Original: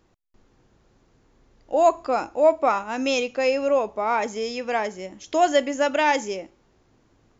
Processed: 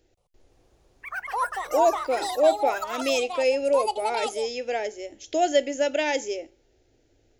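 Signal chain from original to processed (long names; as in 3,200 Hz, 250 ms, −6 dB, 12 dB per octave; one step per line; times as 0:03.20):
phaser with its sweep stopped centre 450 Hz, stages 4
delay with pitch and tempo change per echo 174 ms, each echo +7 semitones, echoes 3, each echo −6 dB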